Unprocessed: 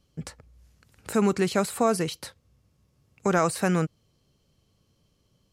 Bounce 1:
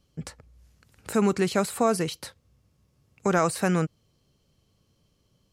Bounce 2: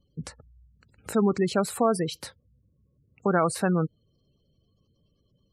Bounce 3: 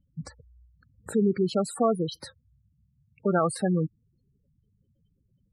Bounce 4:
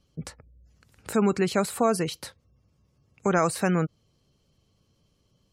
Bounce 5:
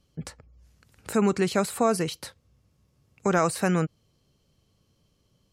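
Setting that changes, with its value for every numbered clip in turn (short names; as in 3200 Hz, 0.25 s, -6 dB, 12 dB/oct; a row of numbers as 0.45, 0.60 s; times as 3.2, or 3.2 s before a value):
spectral gate, under each frame's peak: -60, -20, -10, -35, -45 dB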